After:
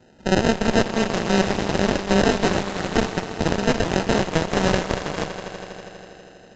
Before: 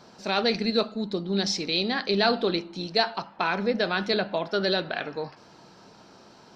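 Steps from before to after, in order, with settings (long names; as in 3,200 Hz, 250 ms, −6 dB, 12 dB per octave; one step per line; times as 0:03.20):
parametric band 2,000 Hz −5 dB 2.2 octaves
decimation without filtering 39×
echo that builds up and dies away 81 ms, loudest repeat 5, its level −14 dB
harmonic generator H 7 −24 dB, 8 −13 dB, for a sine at −8 dBFS
level +4 dB
A-law companding 128 kbit/s 16,000 Hz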